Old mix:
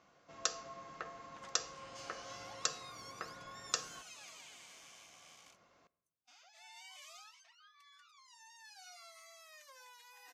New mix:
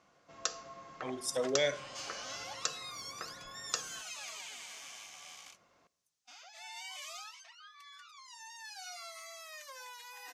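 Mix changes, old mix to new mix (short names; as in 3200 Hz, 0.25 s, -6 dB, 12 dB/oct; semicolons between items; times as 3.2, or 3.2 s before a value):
speech: unmuted; second sound +9.0 dB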